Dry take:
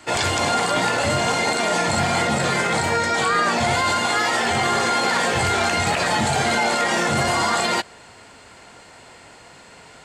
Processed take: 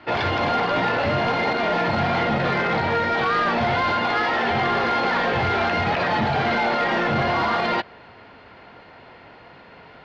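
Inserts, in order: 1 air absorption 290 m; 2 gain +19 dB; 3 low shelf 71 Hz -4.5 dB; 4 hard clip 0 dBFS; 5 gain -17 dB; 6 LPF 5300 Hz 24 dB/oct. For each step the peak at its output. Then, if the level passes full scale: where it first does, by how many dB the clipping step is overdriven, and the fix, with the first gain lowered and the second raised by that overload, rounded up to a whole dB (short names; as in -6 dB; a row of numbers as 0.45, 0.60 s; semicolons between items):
-9.5, +9.5, +9.0, 0.0, -17.0, -16.0 dBFS; step 2, 9.0 dB; step 2 +10 dB, step 5 -8 dB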